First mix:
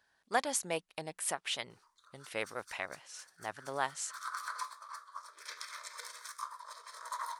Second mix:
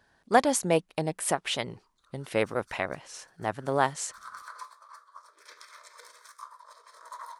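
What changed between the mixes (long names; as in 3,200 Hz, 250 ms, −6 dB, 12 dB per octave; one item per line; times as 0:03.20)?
speech +11.0 dB
master: add tilt shelving filter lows +6.5 dB, about 670 Hz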